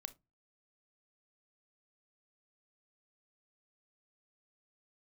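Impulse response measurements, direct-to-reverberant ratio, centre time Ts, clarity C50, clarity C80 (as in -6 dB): 12.5 dB, 3 ms, 19.5 dB, 30.0 dB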